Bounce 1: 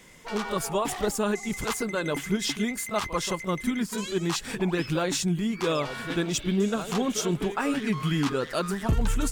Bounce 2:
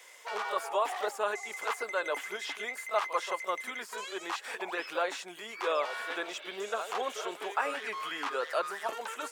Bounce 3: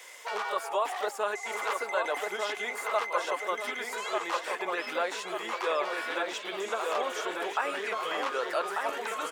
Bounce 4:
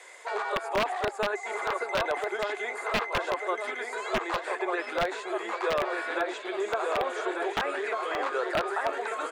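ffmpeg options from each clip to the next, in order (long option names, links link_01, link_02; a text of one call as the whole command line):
ffmpeg -i in.wav -filter_complex "[0:a]acrossover=split=2600[link_01][link_02];[link_02]acompressor=threshold=-46dB:ratio=4:attack=1:release=60[link_03];[link_01][link_03]amix=inputs=2:normalize=0,highpass=frequency=530:width=0.5412,highpass=frequency=530:width=1.3066" out.wav
ffmpeg -i in.wav -filter_complex "[0:a]asplit=2[link_01][link_02];[link_02]adelay=1193,lowpass=frequency=2700:poles=1,volume=-3.5dB,asplit=2[link_03][link_04];[link_04]adelay=1193,lowpass=frequency=2700:poles=1,volume=0.5,asplit=2[link_05][link_06];[link_06]adelay=1193,lowpass=frequency=2700:poles=1,volume=0.5,asplit=2[link_07][link_08];[link_08]adelay=1193,lowpass=frequency=2700:poles=1,volume=0.5,asplit=2[link_09][link_10];[link_10]adelay=1193,lowpass=frequency=2700:poles=1,volume=0.5,asplit=2[link_11][link_12];[link_12]adelay=1193,lowpass=frequency=2700:poles=1,volume=0.5,asplit=2[link_13][link_14];[link_14]adelay=1193,lowpass=frequency=2700:poles=1,volume=0.5[link_15];[link_01][link_03][link_05][link_07][link_09][link_11][link_13][link_15]amix=inputs=8:normalize=0,asplit=2[link_16][link_17];[link_17]acompressor=threshold=-40dB:ratio=6,volume=1.5dB[link_18];[link_16][link_18]amix=inputs=2:normalize=0,volume=-1.5dB" out.wav
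ffmpeg -i in.wav -filter_complex "[0:a]highpass=frequency=270:width=0.5412,highpass=frequency=270:width=1.3066,equalizer=frequency=370:width_type=q:width=4:gain=7,equalizer=frequency=700:width_type=q:width=4:gain=5,equalizer=frequency=1600:width_type=q:width=4:gain=3,equalizer=frequency=3000:width_type=q:width=4:gain=-7,equalizer=frequency=5600:width_type=q:width=4:gain=-10,lowpass=frequency=9300:width=0.5412,lowpass=frequency=9300:width=1.3066,aeval=exprs='(mod(7.94*val(0)+1,2)-1)/7.94':channel_layout=same,acrossover=split=4400[link_01][link_02];[link_02]acompressor=threshold=-47dB:ratio=4:attack=1:release=60[link_03];[link_01][link_03]amix=inputs=2:normalize=0" out.wav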